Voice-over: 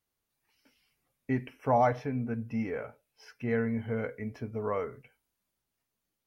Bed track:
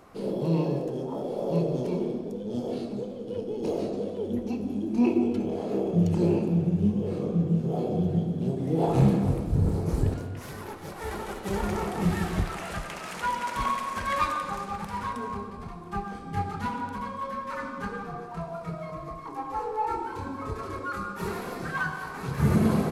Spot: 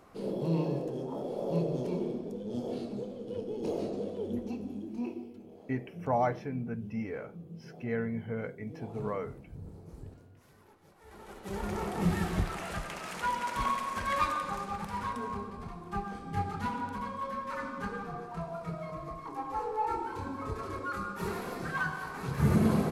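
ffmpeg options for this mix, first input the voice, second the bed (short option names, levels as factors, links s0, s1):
-filter_complex "[0:a]adelay=4400,volume=0.668[s0];[1:a]volume=5.01,afade=t=out:st=4.28:d=1:silence=0.141254,afade=t=in:st=11.06:d=0.97:silence=0.11885[s1];[s0][s1]amix=inputs=2:normalize=0"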